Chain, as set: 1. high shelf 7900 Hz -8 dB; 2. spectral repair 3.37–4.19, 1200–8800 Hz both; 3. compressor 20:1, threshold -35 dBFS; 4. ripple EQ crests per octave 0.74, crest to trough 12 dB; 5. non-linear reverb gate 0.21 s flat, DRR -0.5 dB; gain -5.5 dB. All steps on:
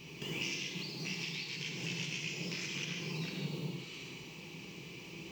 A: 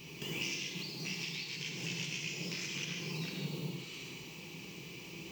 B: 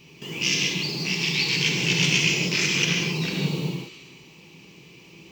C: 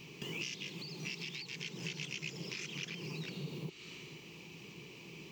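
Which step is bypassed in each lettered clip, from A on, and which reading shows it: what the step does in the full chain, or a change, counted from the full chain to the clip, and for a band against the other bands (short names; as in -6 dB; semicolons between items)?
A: 1, 8 kHz band +2.5 dB; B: 3, mean gain reduction 10.0 dB; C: 5, crest factor change +2.0 dB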